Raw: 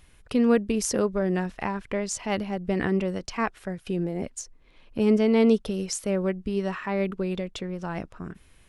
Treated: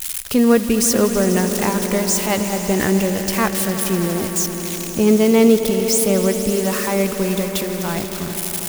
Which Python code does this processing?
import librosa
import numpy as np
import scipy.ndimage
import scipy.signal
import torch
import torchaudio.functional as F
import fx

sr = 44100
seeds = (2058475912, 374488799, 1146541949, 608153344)

y = x + 0.5 * 10.0 ** (-22.5 / 20.0) * np.diff(np.sign(x), prepend=np.sign(x[:1]))
y = fx.echo_swell(y, sr, ms=82, loudest=5, wet_db=-15.0)
y = F.gain(torch.from_numpy(y), 7.0).numpy()